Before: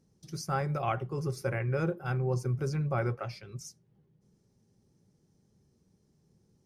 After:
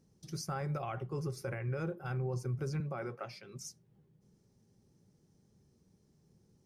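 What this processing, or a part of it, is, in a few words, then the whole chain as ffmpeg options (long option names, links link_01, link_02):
stacked limiters: -filter_complex "[0:a]alimiter=limit=-24dB:level=0:latency=1:release=61,alimiter=level_in=5dB:limit=-24dB:level=0:latency=1:release=448,volume=-5dB,asettb=1/sr,asplit=3[link_01][link_02][link_03];[link_01]atrim=end=2.804[link_04];[link_02]atrim=start=2.8:end=3.61,asetpts=PTS-STARTPTS,afade=type=in:duration=0.004:curve=qsin,afade=type=out:start_time=0.806:duration=0.004:curve=qsin,highpass=frequency=150:width=0.5412,highpass=frequency=150:width=1.3066[link_05];[link_03]atrim=start=3.606[link_06];[link_04][link_05]acrossfade=duration=0.004:curve1=hsin:curve2=qsin[link_07];[link_07][link_06]acrossfade=duration=0.004:curve1=qsin:curve2=hsin"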